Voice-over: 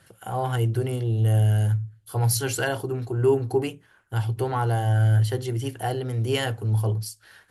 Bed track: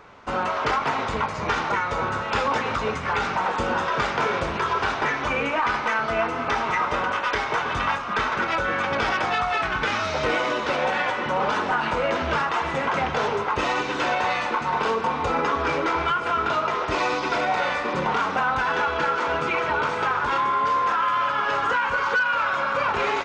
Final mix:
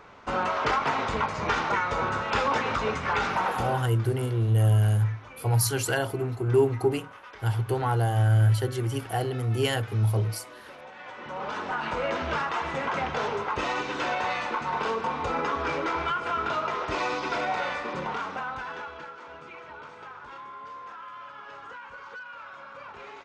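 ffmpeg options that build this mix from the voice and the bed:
-filter_complex "[0:a]adelay=3300,volume=-1dB[a];[1:a]volume=15dB,afade=t=out:st=3.43:d=0.48:silence=0.1,afade=t=in:st=10.96:d=1.08:silence=0.141254,afade=t=out:st=17.47:d=1.66:silence=0.177828[b];[a][b]amix=inputs=2:normalize=0"

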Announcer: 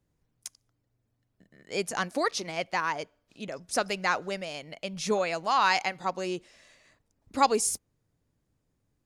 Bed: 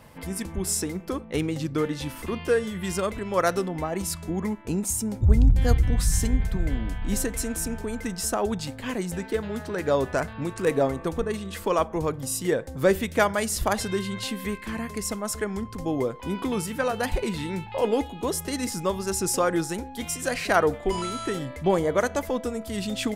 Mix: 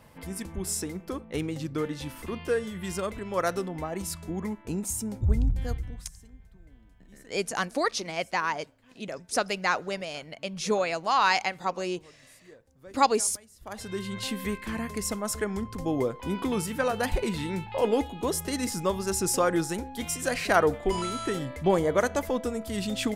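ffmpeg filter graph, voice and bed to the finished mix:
-filter_complex "[0:a]adelay=5600,volume=1dB[a];[1:a]volume=22.5dB,afade=t=out:st=5.17:d=0.94:silence=0.0668344,afade=t=in:st=13.6:d=0.7:silence=0.0446684[b];[a][b]amix=inputs=2:normalize=0"

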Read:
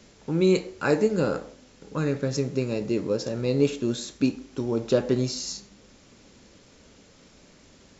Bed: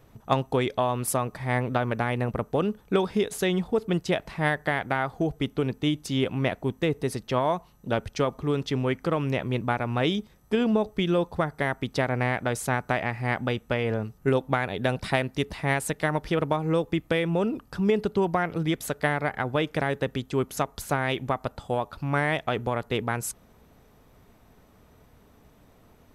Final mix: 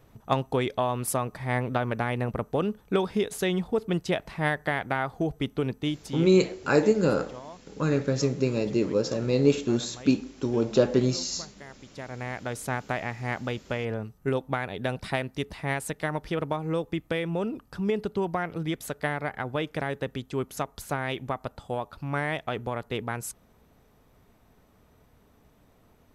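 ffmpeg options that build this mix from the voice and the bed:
-filter_complex "[0:a]adelay=5850,volume=1dB[a];[1:a]volume=13.5dB,afade=t=out:st=5.71:d=0.69:silence=0.133352,afade=t=in:st=11.88:d=0.81:silence=0.177828[b];[a][b]amix=inputs=2:normalize=0"

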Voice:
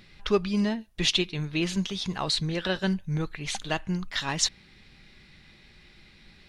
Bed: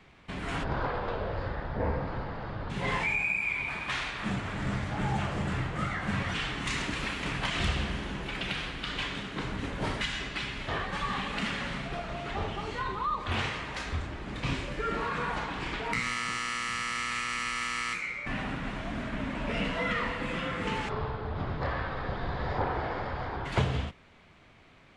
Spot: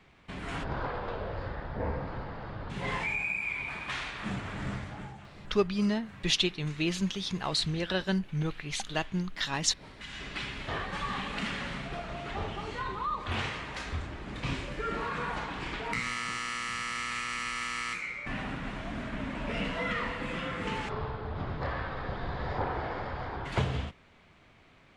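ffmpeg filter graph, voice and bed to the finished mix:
-filter_complex "[0:a]adelay=5250,volume=-2.5dB[a];[1:a]volume=13.5dB,afade=t=out:st=4.65:d=0.51:silence=0.16788,afade=t=in:st=9.96:d=0.43:silence=0.149624[b];[a][b]amix=inputs=2:normalize=0"

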